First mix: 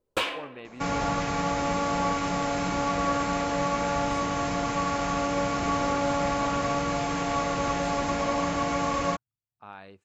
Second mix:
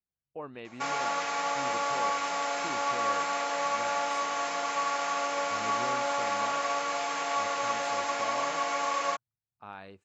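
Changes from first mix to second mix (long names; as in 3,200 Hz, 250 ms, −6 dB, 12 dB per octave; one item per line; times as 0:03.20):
first sound: muted
second sound: add high-pass filter 680 Hz 12 dB per octave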